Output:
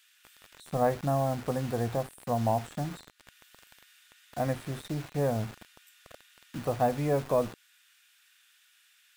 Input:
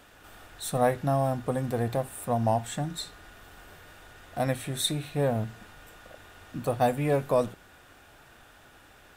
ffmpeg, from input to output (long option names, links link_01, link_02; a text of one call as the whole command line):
ffmpeg -i in.wav -filter_complex "[0:a]acrossover=split=1900[link_01][link_02];[link_01]acrusher=bits=6:mix=0:aa=0.000001[link_03];[link_02]acompressor=threshold=-51dB:ratio=12[link_04];[link_03][link_04]amix=inputs=2:normalize=0,volume=-2dB" out.wav